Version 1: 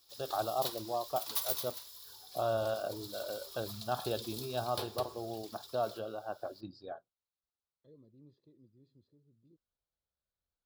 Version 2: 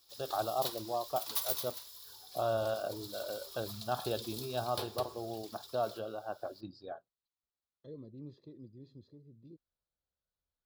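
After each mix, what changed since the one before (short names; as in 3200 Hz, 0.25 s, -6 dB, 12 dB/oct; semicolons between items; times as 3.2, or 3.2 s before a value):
second voice +11.5 dB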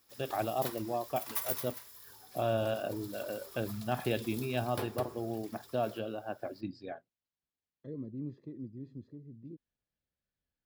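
first voice: add resonant high shelf 1700 Hz +7 dB, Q 3; master: add graphic EQ 125/250/2000/4000 Hz +5/+9/+10/-12 dB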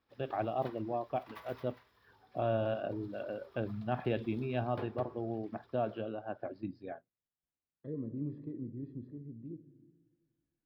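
second voice: send on; background -3.0 dB; master: add air absorption 360 m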